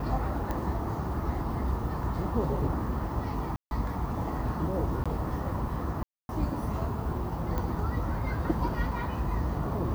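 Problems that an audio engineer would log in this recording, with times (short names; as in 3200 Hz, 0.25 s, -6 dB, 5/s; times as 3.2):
0.51 pop -19 dBFS
3.56–3.71 gap 0.151 s
5.04–5.06 gap 16 ms
6.03–6.29 gap 0.261 s
7.58 pop -19 dBFS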